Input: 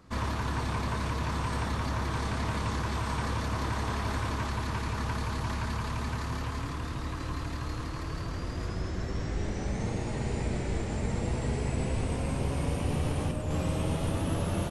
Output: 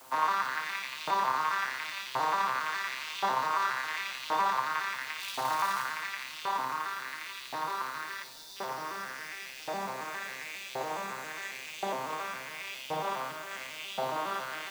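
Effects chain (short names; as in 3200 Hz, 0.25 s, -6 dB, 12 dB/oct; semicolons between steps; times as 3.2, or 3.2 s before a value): arpeggiated vocoder minor triad, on C3, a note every 0.137 s; 5.19–5.82 crackle 450/s -41 dBFS; 8.24–8.56 spectral delete 1000–3400 Hz; in parallel at -2 dB: limiter -30 dBFS, peak gain reduction 9.5 dB; on the sum: LFO high-pass saw up 0.93 Hz 750–3200 Hz; added noise white -63 dBFS; on a send at -10.5 dB: resonant high shelf 2900 Hz +9 dB, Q 1.5 + reverb RT60 1.0 s, pre-delay 47 ms; on the sum: gain +7 dB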